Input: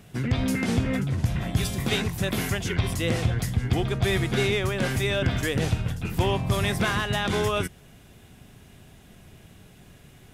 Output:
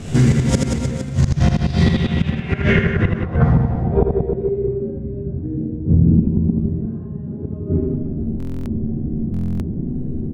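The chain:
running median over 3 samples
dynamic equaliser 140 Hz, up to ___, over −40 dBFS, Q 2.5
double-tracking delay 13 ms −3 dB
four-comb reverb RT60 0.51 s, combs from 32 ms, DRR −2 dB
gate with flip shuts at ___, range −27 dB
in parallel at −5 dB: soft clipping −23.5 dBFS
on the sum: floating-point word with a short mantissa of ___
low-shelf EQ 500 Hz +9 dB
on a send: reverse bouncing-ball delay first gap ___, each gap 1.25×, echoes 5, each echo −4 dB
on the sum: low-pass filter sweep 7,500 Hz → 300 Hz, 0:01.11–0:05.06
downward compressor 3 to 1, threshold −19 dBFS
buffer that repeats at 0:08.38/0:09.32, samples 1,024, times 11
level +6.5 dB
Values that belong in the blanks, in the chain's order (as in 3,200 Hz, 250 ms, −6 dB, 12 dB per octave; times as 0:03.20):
+3 dB, −12 dBFS, 2 bits, 80 ms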